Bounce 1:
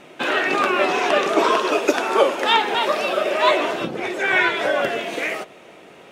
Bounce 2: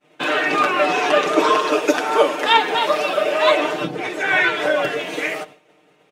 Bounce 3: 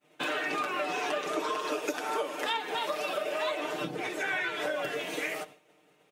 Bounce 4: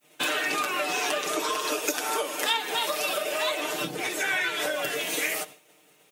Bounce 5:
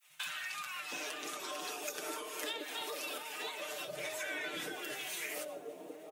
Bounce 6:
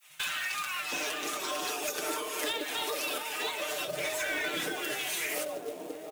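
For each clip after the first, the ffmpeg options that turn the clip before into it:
ffmpeg -i in.wav -af "agate=range=-33dB:threshold=-35dB:ratio=3:detection=peak,aecho=1:1:6.6:0.79,volume=-1dB" out.wav
ffmpeg -i in.wav -af "highshelf=frequency=8300:gain=11,acompressor=threshold=-20dB:ratio=6,volume=-8.5dB" out.wav
ffmpeg -i in.wav -af "crystalizer=i=3.5:c=0,volume=1.5dB" out.wav
ffmpeg -i in.wav -filter_complex "[0:a]acompressor=threshold=-38dB:ratio=3,acrossover=split=160|940[link_01][link_02][link_03];[link_01]adelay=60[link_04];[link_02]adelay=720[link_05];[link_04][link_05][link_03]amix=inputs=3:normalize=0,volume=-2.5dB" out.wav
ffmpeg -i in.wav -filter_complex "[0:a]acrossover=split=510[link_01][link_02];[link_02]volume=34.5dB,asoftclip=hard,volume=-34.5dB[link_03];[link_01][link_03]amix=inputs=2:normalize=0,acrusher=bits=3:mode=log:mix=0:aa=0.000001,volume=7.5dB" out.wav

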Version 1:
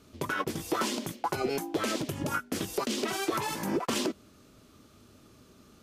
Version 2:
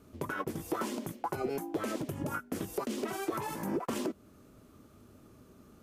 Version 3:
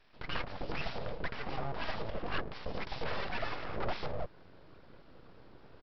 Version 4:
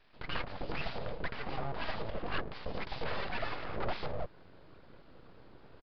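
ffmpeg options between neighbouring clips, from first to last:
ffmpeg -i in.wav -filter_complex "[0:a]equalizer=frequency=4200:width_type=o:width=2.1:gain=-10.5,asplit=2[link_01][link_02];[link_02]acompressor=threshold=-39dB:ratio=6,volume=-1dB[link_03];[link_01][link_03]amix=inputs=2:normalize=0,volume=-5dB" out.wav
ffmpeg -i in.wav -filter_complex "[0:a]alimiter=level_in=3dB:limit=-24dB:level=0:latency=1:release=34,volume=-3dB,acrossover=split=510[link_01][link_02];[link_01]adelay=140[link_03];[link_03][link_02]amix=inputs=2:normalize=0,aresample=11025,aeval=exprs='abs(val(0))':channel_layout=same,aresample=44100,volume=4dB" out.wav
ffmpeg -i in.wav -af "aresample=11025,aresample=44100" out.wav

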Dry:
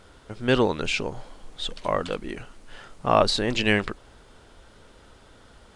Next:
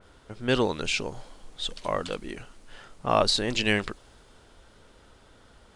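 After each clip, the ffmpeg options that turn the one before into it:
ffmpeg -i in.wav -af "adynamicequalizer=threshold=0.01:dfrequency=3200:dqfactor=0.7:tfrequency=3200:tqfactor=0.7:attack=5:release=100:ratio=0.375:range=3:mode=boostabove:tftype=highshelf,volume=-3.5dB" out.wav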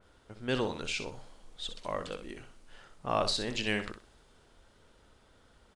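ffmpeg -i in.wav -af "aecho=1:1:62|124|186:0.335|0.077|0.0177,volume=-7.5dB" out.wav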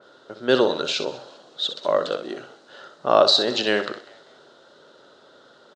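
ffmpeg -i in.wav -filter_complex "[0:a]highpass=frequency=160:width=0.5412,highpass=frequency=160:width=1.3066,equalizer=frequency=200:width_type=q:width=4:gain=-6,equalizer=frequency=380:width_type=q:width=4:gain=6,equalizer=frequency=580:width_type=q:width=4:gain=9,equalizer=frequency=1400:width_type=q:width=4:gain=7,equalizer=frequency=2300:width_type=q:width=4:gain=-10,equalizer=frequency=3900:width_type=q:width=4:gain=9,lowpass=frequency=6700:width=0.5412,lowpass=frequency=6700:width=1.3066,asplit=4[link_01][link_02][link_03][link_04];[link_02]adelay=196,afreqshift=77,volume=-21.5dB[link_05];[link_03]adelay=392,afreqshift=154,volume=-30.6dB[link_06];[link_04]adelay=588,afreqshift=231,volume=-39.7dB[link_07];[link_01][link_05][link_06][link_07]amix=inputs=4:normalize=0,volume=9dB" out.wav

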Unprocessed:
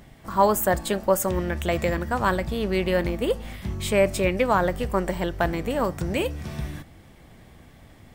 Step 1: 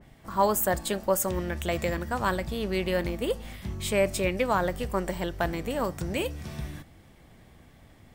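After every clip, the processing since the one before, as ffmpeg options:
ffmpeg -i in.wav -af "adynamicequalizer=threshold=0.0126:dfrequency=2900:dqfactor=0.7:tfrequency=2900:tqfactor=0.7:attack=5:release=100:ratio=0.375:range=2:mode=boostabove:tftype=highshelf,volume=-4.5dB" out.wav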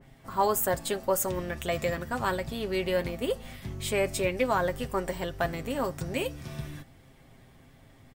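ffmpeg -i in.wav -af "aecho=1:1:7.5:0.5,volume=-2dB" out.wav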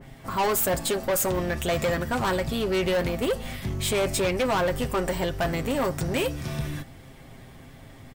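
ffmpeg -i in.wav -af "asoftclip=type=tanh:threshold=-29.5dB,volume=9dB" out.wav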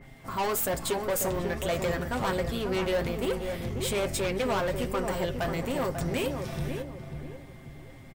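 ffmpeg -i in.wav -filter_complex "[0:a]aeval=exprs='val(0)+0.002*sin(2*PI*2100*n/s)':channel_layout=same,flanger=delay=0.5:depth=9.6:regen=79:speed=1.2:shape=triangular,asplit=2[link_01][link_02];[link_02]adelay=542,lowpass=frequency=1000:poles=1,volume=-5dB,asplit=2[link_03][link_04];[link_04]adelay=542,lowpass=frequency=1000:poles=1,volume=0.39,asplit=2[link_05][link_06];[link_06]adelay=542,lowpass=frequency=1000:poles=1,volume=0.39,asplit=2[link_07][link_08];[link_08]adelay=542,lowpass=frequency=1000:poles=1,volume=0.39,asplit=2[link_09][link_10];[link_10]adelay=542,lowpass=frequency=1000:poles=1,volume=0.39[link_11];[link_01][link_03][link_05][link_07][link_09][link_11]amix=inputs=6:normalize=0" out.wav

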